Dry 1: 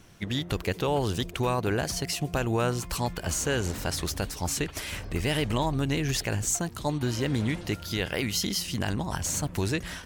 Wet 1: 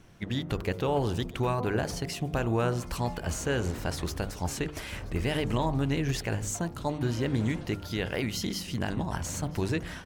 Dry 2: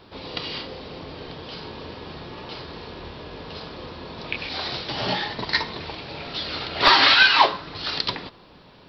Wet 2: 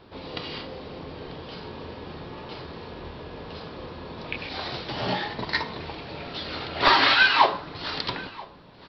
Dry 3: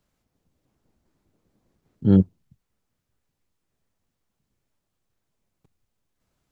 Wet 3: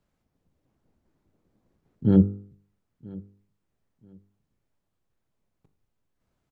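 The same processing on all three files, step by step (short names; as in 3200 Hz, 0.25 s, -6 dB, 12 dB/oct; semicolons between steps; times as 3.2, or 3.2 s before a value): high shelf 2700 Hz -8.5 dB; de-hum 49.89 Hz, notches 29; on a send: feedback echo 0.982 s, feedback 23%, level -22 dB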